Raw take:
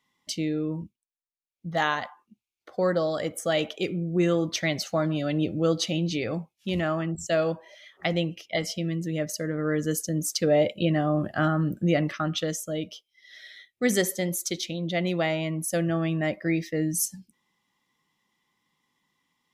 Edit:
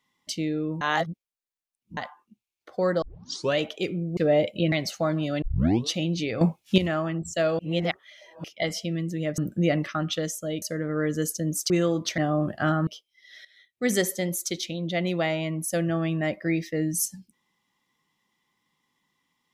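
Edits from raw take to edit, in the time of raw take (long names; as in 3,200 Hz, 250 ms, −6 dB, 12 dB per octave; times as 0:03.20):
0:00.81–0:01.97: reverse
0:03.02: tape start 0.56 s
0:04.17–0:04.65: swap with 0:10.39–0:10.94
0:05.35: tape start 0.49 s
0:06.34–0:06.71: clip gain +11.5 dB
0:07.52–0:08.37: reverse
0:11.63–0:12.87: move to 0:09.31
0:13.45–0:13.94: fade in, from −17 dB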